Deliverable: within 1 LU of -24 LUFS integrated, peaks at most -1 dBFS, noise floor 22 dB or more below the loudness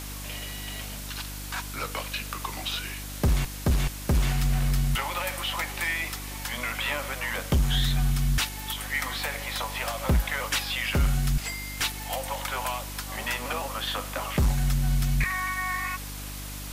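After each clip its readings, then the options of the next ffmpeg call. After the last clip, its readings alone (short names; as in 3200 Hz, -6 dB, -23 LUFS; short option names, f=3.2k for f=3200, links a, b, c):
hum 50 Hz; harmonics up to 300 Hz; hum level -36 dBFS; noise floor -37 dBFS; noise floor target -51 dBFS; loudness -28.5 LUFS; peak -15.5 dBFS; loudness target -24.0 LUFS
-> -af "bandreject=f=50:t=h:w=4,bandreject=f=100:t=h:w=4,bandreject=f=150:t=h:w=4,bandreject=f=200:t=h:w=4,bandreject=f=250:t=h:w=4,bandreject=f=300:t=h:w=4"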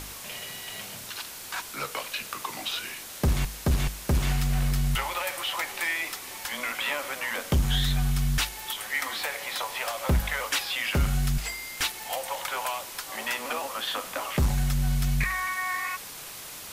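hum none; noise floor -41 dBFS; noise floor target -51 dBFS
-> -af "afftdn=nr=10:nf=-41"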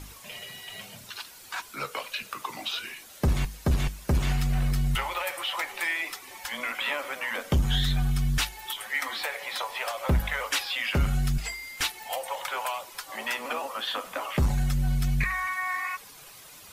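noise floor -48 dBFS; noise floor target -52 dBFS
-> -af "afftdn=nr=6:nf=-48"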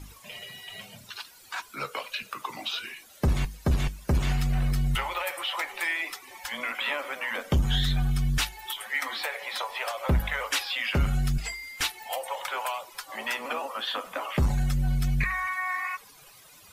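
noise floor -53 dBFS; loudness -29.5 LUFS; peak -14.5 dBFS; loudness target -24.0 LUFS
-> -af "volume=5.5dB"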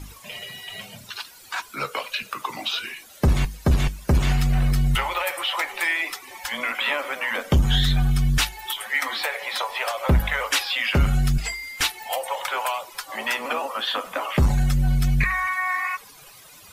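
loudness -24.0 LUFS; peak -9.0 dBFS; noise floor -47 dBFS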